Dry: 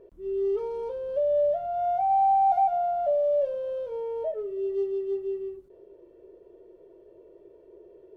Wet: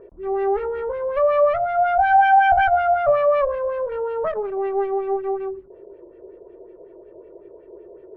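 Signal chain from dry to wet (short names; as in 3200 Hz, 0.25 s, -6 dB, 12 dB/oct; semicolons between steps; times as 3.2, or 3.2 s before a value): one-sided clip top -35 dBFS, bottom -18.5 dBFS; LFO low-pass sine 5.4 Hz 720–2400 Hz; gain +7 dB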